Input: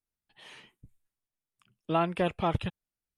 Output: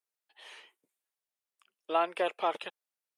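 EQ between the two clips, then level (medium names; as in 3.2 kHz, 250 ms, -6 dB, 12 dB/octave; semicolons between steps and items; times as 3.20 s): high-pass 410 Hz 24 dB/octave; 0.0 dB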